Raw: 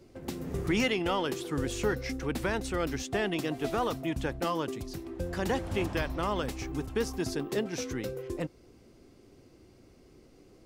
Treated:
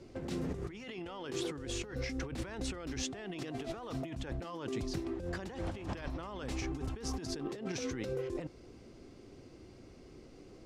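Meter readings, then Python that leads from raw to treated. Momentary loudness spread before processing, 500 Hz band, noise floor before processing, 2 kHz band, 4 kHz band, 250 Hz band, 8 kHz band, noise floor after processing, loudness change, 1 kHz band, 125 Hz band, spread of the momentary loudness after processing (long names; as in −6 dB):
8 LU, −8.5 dB, −58 dBFS, −10.5 dB, −6.5 dB, −6.5 dB, −3.5 dB, −55 dBFS, −7.5 dB, −11.5 dB, −5.0 dB, 17 LU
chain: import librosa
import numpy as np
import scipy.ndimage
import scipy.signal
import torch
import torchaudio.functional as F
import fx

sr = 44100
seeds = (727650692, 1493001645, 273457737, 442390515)

y = scipy.signal.sosfilt(scipy.signal.butter(2, 7600.0, 'lowpass', fs=sr, output='sos'), x)
y = fx.over_compress(y, sr, threshold_db=-38.0, ratio=-1.0)
y = y * librosa.db_to_amplitude(-2.0)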